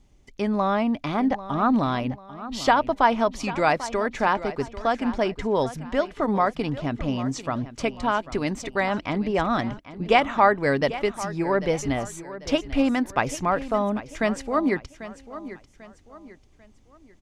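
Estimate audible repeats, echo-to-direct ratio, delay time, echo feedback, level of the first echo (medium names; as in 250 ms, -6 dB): 3, -14.0 dB, 793 ms, 37%, -14.5 dB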